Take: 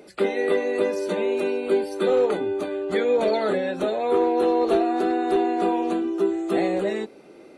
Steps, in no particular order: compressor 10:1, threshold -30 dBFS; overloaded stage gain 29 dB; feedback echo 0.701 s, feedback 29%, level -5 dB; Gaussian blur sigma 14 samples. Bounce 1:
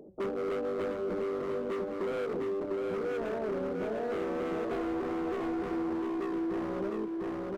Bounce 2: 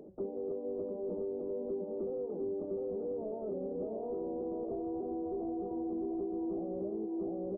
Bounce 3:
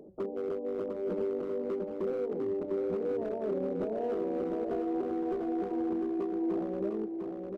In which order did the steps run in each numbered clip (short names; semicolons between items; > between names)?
Gaussian blur > overloaded stage > feedback echo > compressor; feedback echo > compressor > overloaded stage > Gaussian blur; Gaussian blur > compressor > overloaded stage > feedback echo